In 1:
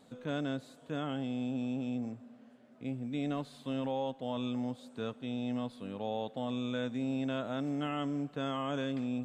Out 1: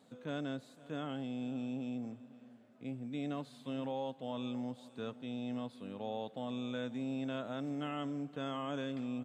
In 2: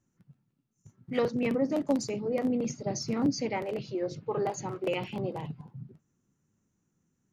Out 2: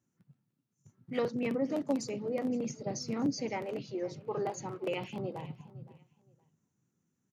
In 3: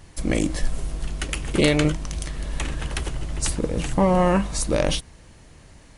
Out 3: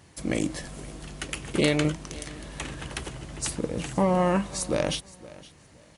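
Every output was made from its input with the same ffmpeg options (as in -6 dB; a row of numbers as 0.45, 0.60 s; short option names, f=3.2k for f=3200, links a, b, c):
-filter_complex "[0:a]highpass=93,asplit=2[a][b];[b]aecho=0:1:517|1034:0.1|0.023[c];[a][c]amix=inputs=2:normalize=0,volume=-4dB"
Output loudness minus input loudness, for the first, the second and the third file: -4.0, -4.0, -4.5 LU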